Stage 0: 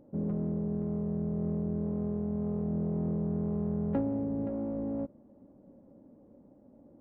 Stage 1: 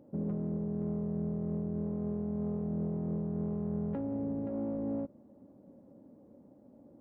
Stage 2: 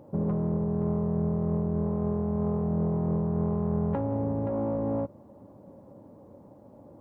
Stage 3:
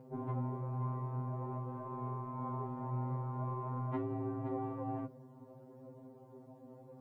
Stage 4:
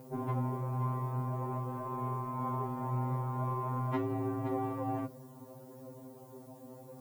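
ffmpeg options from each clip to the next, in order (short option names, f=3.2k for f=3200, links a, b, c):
-af "highpass=71,alimiter=level_in=3dB:limit=-24dB:level=0:latency=1:release=129,volume=-3dB"
-af "equalizer=f=100:t=o:w=0.67:g=6,equalizer=f=250:t=o:w=0.67:g=-7,equalizer=f=1k:t=o:w=0.67:g=8,volume=8.5dB"
-af "flanger=delay=2.4:depth=4.8:regen=75:speed=0.48:shape=sinusoidal,afftfilt=real='re*2.45*eq(mod(b,6),0)':imag='im*2.45*eq(mod(b,6),0)':win_size=2048:overlap=0.75,volume=4dB"
-af "crystalizer=i=5.5:c=0,volume=3.5dB"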